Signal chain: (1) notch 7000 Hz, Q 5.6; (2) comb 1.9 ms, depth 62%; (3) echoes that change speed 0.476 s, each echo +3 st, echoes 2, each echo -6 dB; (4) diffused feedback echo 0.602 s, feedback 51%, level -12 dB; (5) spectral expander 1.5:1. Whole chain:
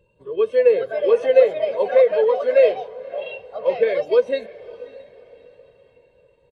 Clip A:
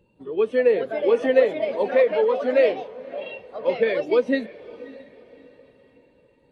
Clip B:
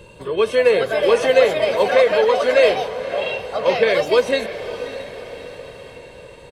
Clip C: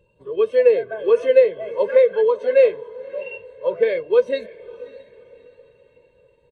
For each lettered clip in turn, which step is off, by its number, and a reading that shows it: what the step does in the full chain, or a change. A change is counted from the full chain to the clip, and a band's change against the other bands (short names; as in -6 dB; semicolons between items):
2, 250 Hz band +10.0 dB; 5, 500 Hz band -8.0 dB; 3, 1 kHz band -4.0 dB